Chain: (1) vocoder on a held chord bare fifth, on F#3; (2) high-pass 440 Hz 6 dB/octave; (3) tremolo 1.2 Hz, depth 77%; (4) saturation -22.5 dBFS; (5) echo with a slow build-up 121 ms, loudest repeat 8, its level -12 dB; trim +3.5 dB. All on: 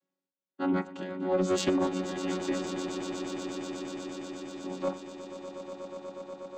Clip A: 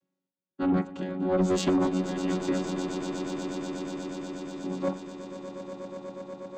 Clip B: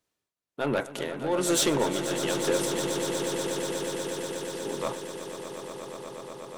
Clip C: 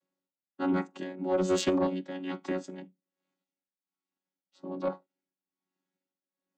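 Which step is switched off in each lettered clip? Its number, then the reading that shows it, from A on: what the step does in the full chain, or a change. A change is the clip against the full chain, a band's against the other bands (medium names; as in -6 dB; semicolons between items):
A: 2, crest factor change -1.5 dB; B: 1, 8 kHz band +8.5 dB; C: 5, echo-to-direct -0.5 dB to none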